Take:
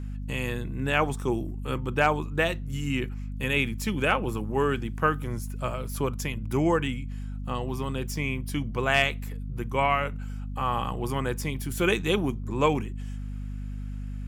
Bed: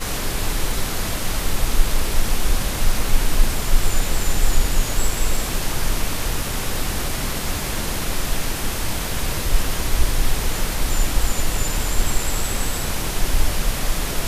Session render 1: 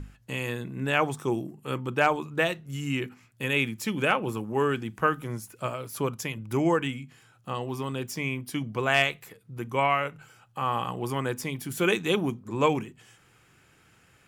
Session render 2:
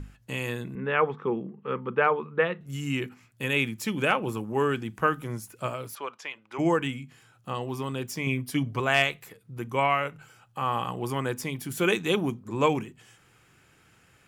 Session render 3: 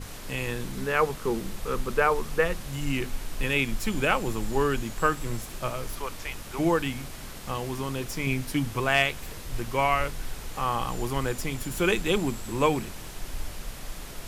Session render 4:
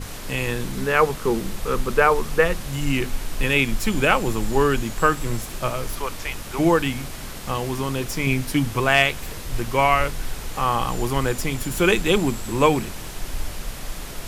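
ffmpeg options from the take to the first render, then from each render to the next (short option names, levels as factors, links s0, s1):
-af "bandreject=f=50:t=h:w=6,bandreject=f=100:t=h:w=6,bandreject=f=150:t=h:w=6,bandreject=f=200:t=h:w=6,bandreject=f=250:t=h:w=6"
-filter_complex "[0:a]asettb=1/sr,asplit=3[s0][s1][s2];[s0]atrim=end=0.754[s3];[s1]atrim=start=0.75:end=2.61,asetpts=PTS-STARTPTS,afade=t=in:d=0.004:c=qsin,afade=t=out:st=1.856:d=0.004:c=qsin,highpass=180,equalizer=f=200:t=q:w=4:g=9,equalizer=f=300:t=q:w=4:g=-9,equalizer=f=460:t=q:w=4:g=8,equalizer=f=670:t=q:w=4:g=-8,equalizer=f=1200:t=q:w=4:g=4,equalizer=f=2600:t=q:w=4:g=-4,lowpass=f=2700:w=0.5412,lowpass=f=2700:w=1.3066[s4];[s2]atrim=start=2.606[s5];[s3][s4]acrossfade=d=0.004:c1=hsin:c2=qsin[s6];[s6][s5]acrossfade=d=0.004:c1=qsin:c2=hsin,asplit=3[s7][s8][s9];[s7]afade=t=out:st=5.94:d=0.02[s10];[s8]highpass=720,lowpass=3500,afade=t=in:st=5.94:d=0.02,afade=t=out:st=6.58:d=0.02[s11];[s9]afade=t=in:st=6.58:d=0.02[s12];[s10][s11][s12]amix=inputs=3:normalize=0,asettb=1/sr,asplit=3[s13][s14][s15];[s13]atrim=end=8.264[s16];[s14]atrim=start=8.26:end=8.8,asetpts=PTS-STARTPTS,afade=t=in:d=0.004:c=qsin,afade=t=out:st=0.536:d=0.004:c=qsin,aecho=1:1:7.2:0.75,atrim=end_sample=23814[s17];[s15]atrim=start=8.796[s18];[s16][s17]acrossfade=d=0.004:c1=hsin:c2=qsin[s19];[s19][s18]acrossfade=d=0.004:c1=qsin:c2=hsin"
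-filter_complex "[1:a]volume=0.158[s0];[0:a][s0]amix=inputs=2:normalize=0"
-af "volume=2,alimiter=limit=0.708:level=0:latency=1"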